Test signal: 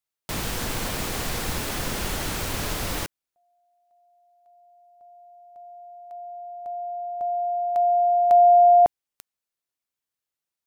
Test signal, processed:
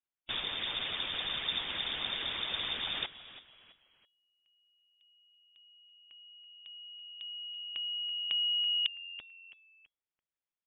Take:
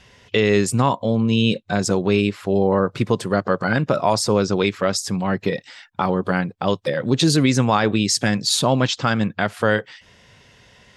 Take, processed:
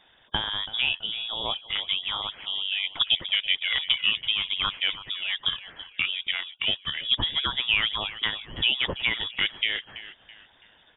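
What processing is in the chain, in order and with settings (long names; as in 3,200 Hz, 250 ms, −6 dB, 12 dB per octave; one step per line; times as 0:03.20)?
harmonic and percussive parts rebalanced harmonic −14 dB
echo with shifted repeats 330 ms, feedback 37%, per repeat +88 Hz, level −15 dB
voice inversion scrambler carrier 3,600 Hz
level −3 dB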